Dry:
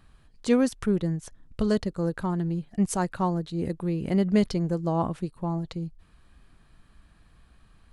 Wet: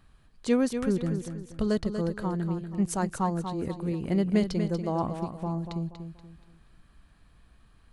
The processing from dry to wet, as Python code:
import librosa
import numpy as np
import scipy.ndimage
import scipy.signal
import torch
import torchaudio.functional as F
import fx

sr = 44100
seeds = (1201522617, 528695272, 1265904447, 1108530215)

y = fx.echo_feedback(x, sr, ms=239, feedback_pct=35, wet_db=-8)
y = y * 10.0 ** (-2.5 / 20.0)